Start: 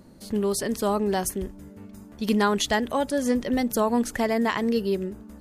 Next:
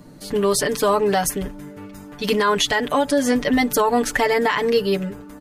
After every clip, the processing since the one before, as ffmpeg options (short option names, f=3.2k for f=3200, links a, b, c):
-filter_complex "[0:a]aecho=1:1:6.8:0.89,acrossover=split=840|4000[a][b][c];[b]dynaudnorm=f=110:g=5:m=6dB[d];[a][d][c]amix=inputs=3:normalize=0,alimiter=limit=-13.5dB:level=0:latency=1:release=71,volume=4.5dB"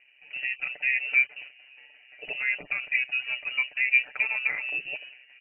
-filter_complex "[0:a]asplit=3[a][b][c];[a]bandpass=f=730:t=q:w=8,volume=0dB[d];[b]bandpass=f=1.09k:t=q:w=8,volume=-6dB[e];[c]bandpass=f=2.44k:t=q:w=8,volume=-9dB[f];[d][e][f]amix=inputs=3:normalize=0,tremolo=f=130:d=0.621,lowpass=f=2.6k:t=q:w=0.5098,lowpass=f=2.6k:t=q:w=0.6013,lowpass=f=2.6k:t=q:w=0.9,lowpass=f=2.6k:t=q:w=2.563,afreqshift=-3100,volume=5dB"